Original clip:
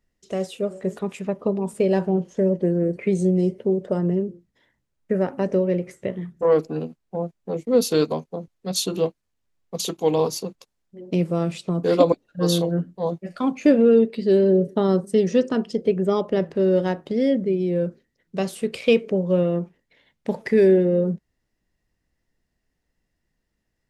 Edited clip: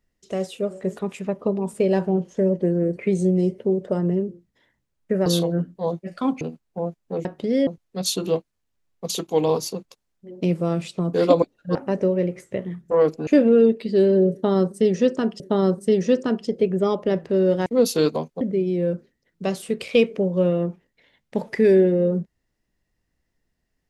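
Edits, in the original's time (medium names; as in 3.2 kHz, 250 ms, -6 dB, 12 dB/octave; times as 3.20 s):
5.26–6.78 s: swap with 12.45–13.60 s
7.62–8.37 s: swap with 16.92–17.34 s
14.66–15.73 s: loop, 2 plays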